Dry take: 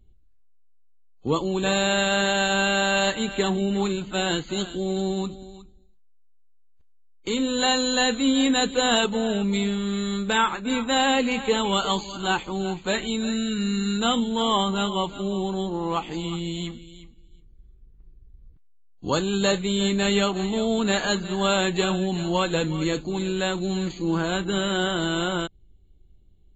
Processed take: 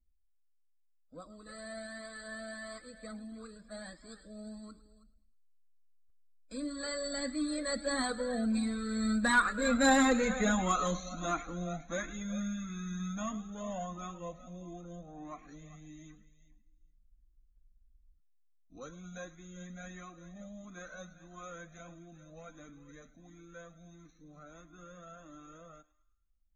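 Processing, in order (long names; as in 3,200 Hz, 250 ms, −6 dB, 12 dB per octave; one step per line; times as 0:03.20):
source passing by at 0:09.98, 36 m/s, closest 27 metres
phaser with its sweep stopped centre 590 Hz, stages 8
soft clipping −18 dBFS, distortion −21 dB
on a send: feedback echo with a high-pass in the loop 106 ms, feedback 49%, high-pass 700 Hz, level −16.5 dB
on the sum: flanger whose copies keep moving one way rising 1.5 Hz
level +6 dB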